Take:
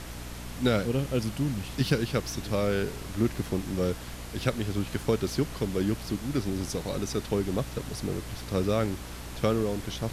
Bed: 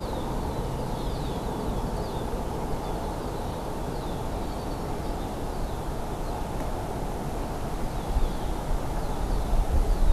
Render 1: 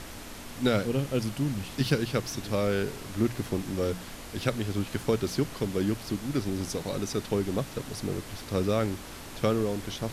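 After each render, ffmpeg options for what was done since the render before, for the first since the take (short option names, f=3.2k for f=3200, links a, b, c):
-af "bandreject=f=60:t=h:w=6,bandreject=f=120:t=h:w=6,bandreject=f=180:t=h:w=6"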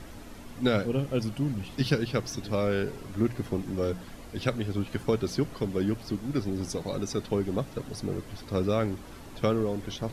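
-af "afftdn=nr=9:nf=-43"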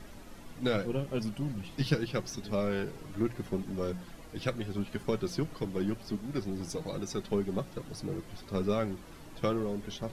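-af "aeval=exprs='0.266*(cos(1*acos(clip(val(0)/0.266,-1,1)))-cos(1*PI/2))+0.00668*(cos(8*acos(clip(val(0)/0.266,-1,1)))-cos(8*PI/2))':c=same,flanger=delay=4.7:depth=1.8:regen=52:speed=0.81:shape=triangular"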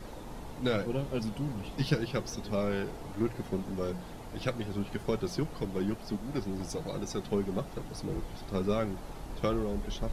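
-filter_complex "[1:a]volume=-15dB[a];[0:a][a]amix=inputs=2:normalize=0"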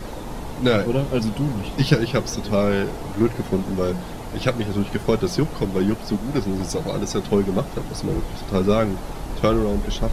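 -af "volume=11.5dB"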